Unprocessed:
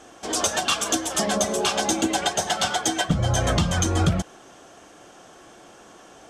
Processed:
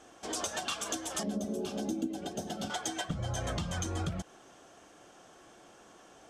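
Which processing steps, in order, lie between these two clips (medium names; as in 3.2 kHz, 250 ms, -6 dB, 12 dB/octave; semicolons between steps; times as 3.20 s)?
1.23–2.70 s: ten-band graphic EQ 250 Hz +12 dB, 1 kHz -11 dB, 2 kHz -11 dB, 4 kHz -5 dB, 8 kHz -9 dB; compression 3:1, threshold -24 dBFS, peak gain reduction 10.5 dB; trim -8.5 dB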